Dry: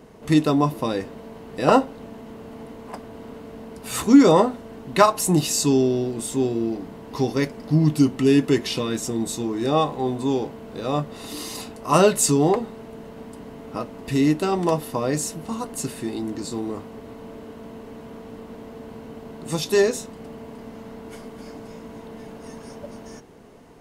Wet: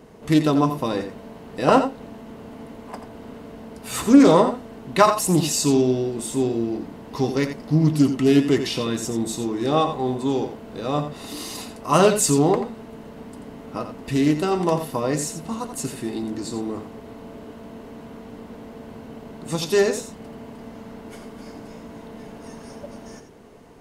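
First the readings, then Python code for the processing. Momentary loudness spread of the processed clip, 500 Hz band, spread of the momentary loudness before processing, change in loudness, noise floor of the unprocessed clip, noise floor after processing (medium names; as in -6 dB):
22 LU, +0.5 dB, 22 LU, +0.5 dB, -41 dBFS, -42 dBFS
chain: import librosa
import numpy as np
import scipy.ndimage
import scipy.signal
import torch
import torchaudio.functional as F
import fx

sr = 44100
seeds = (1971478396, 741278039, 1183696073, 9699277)

y = x + 10.0 ** (-9.5 / 20.0) * np.pad(x, (int(86 * sr / 1000.0), 0))[:len(x)]
y = fx.doppler_dist(y, sr, depth_ms=0.19)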